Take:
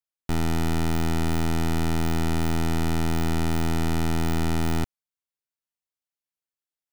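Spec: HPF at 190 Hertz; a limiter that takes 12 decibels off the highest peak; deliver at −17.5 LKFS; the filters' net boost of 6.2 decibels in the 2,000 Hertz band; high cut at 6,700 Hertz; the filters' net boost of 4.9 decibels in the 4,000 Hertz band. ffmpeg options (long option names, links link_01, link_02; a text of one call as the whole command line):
ffmpeg -i in.wav -af "highpass=190,lowpass=6700,equalizer=frequency=2000:width_type=o:gain=6.5,equalizer=frequency=4000:width_type=o:gain=4.5,volume=22dB,alimiter=limit=-1.5dB:level=0:latency=1" out.wav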